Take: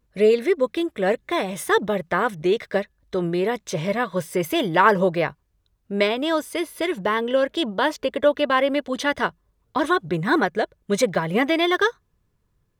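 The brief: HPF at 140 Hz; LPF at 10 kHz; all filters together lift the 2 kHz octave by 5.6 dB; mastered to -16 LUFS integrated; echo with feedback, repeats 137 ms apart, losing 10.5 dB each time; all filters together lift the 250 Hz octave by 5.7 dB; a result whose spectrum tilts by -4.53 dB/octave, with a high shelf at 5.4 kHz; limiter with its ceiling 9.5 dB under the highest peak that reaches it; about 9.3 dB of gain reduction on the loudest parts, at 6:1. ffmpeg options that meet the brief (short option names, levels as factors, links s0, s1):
-af "highpass=140,lowpass=10000,equalizer=f=250:t=o:g=8.5,equalizer=f=2000:t=o:g=6,highshelf=f=5400:g=8,acompressor=threshold=0.112:ratio=6,alimiter=limit=0.141:level=0:latency=1,aecho=1:1:137|274|411:0.299|0.0896|0.0269,volume=3.35"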